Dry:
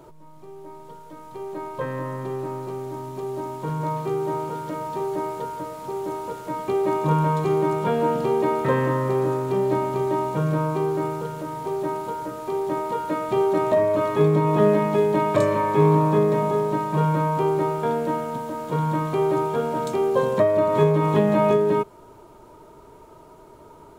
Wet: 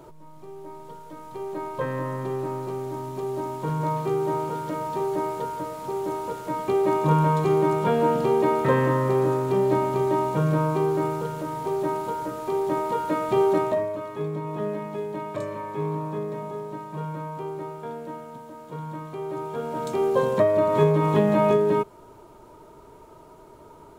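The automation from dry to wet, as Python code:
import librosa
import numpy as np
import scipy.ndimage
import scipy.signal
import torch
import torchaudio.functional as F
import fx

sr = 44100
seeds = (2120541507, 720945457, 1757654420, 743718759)

y = fx.gain(x, sr, db=fx.line((13.53, 0.5), (14.01, -11.5), (19.22, -11.5), (20.03, -1.0)))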